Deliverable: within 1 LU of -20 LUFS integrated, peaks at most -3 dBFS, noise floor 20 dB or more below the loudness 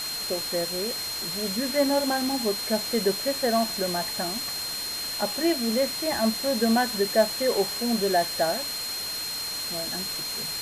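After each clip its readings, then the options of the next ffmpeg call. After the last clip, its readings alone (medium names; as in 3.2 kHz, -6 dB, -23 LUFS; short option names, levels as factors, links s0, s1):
steady tone 4.2 kHz; tone level -31 dBFS; noise floor -32 dBFS; noise floor target -46 dBFS; loudness -25.5 LUFS; peak level -9.0 dBFS; loudness target -20.0 LUFS
-> -af "bandreject=f=4200:w=30"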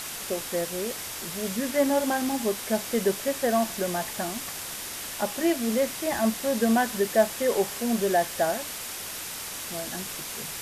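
steady tone not found; noise floor -36 dBFS; noise floor target -47 dBFS
-> -af "afftdn=nr=11:nf=-36"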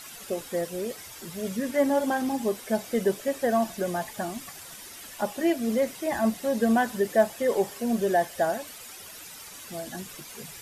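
noise floor -44 dBFS; noise floor target -48 dBFS
-> -af "afftdn=nr=6:nf=-44"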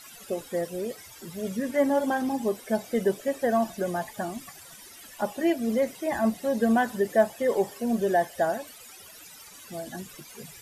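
noise floor -48 dBFS; loudness -27.5 LUFS; peak level -9.5 dBFS; loudness target -20.0 LUFS
-> -af "volume=2.37,alimiter=limit=0.708:level=0:latency=1"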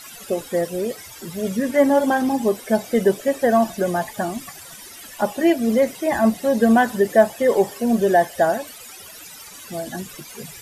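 loudness -20.0 LUFS; peak level -3.0 dBFS; noise floor -40 dBFS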